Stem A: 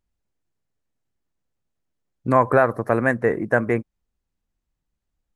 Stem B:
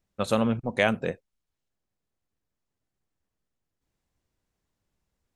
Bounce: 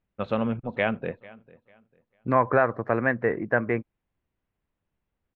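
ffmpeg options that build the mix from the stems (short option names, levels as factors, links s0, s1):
-filter_complex "[0:a]highpass=49,aemphasis=mode=production:type=75kf,volume=0.562[s0];[1:a]volume=0.794,asplit=2[s1][s2];[s2]volume=0.0794,aecho=0:1:447|894|1341|1788:1|0.27|0.0729|0.0197[s3];[s0][s1][s3]amix=inputs=3:normalize=0,lowpass=f=2900:w=0.5412,lowpass=f=2900:w=1.3066"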